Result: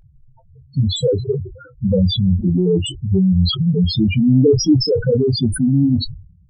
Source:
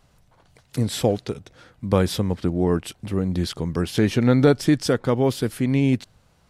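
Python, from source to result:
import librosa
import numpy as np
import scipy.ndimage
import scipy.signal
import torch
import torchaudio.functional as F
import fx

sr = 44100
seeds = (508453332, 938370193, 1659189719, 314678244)

p1 = fx.spec_topn(x, sr, count=2)
p2 = fx.over_compress(p1, sr, threshold_db=-30.0, ratio=-1.0)
p3 = p1 + F.gain(torch.from_numpy(p2), 0.5).numpy()
p4 = fx.chorus_voices(p3, sr, voices=6, hz=0.31, base_ms=22, depth_ms=1.5, mix_pct=20)
p5 = fx.sustainer(p4, sr, db_per_s=92.0)
y = F.gain(torch.from_numpy(p5), 8.0).numpy()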